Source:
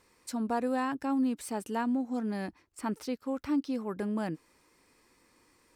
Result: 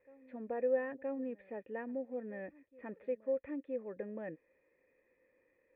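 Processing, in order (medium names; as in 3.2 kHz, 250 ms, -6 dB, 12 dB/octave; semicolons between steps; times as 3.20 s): cascade formant filter e; reverse echo 970 ms -21.5 dB; trim +4.5 dB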